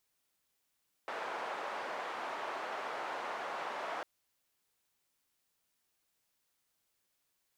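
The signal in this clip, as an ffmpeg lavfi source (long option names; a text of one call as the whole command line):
ffmpeg -f lavfi -i "anoisesrc=color=white:duration=2.95:sample_rate=44100:seed=1,highpass=frequency=700,lowpass=frequency=910,volume=-17.3dB" out.wav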